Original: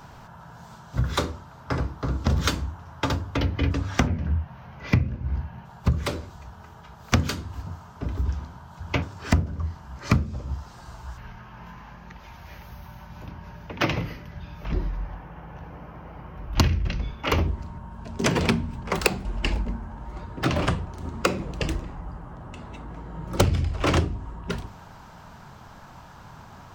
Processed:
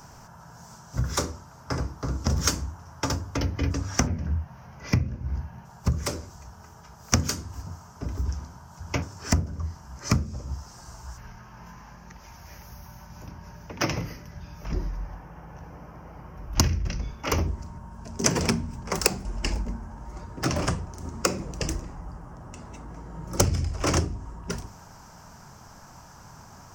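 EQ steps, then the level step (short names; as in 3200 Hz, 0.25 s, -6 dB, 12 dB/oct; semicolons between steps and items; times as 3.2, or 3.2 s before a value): resonant high shelf 4600 Hz +6.5 dB, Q 3; -2.5 dB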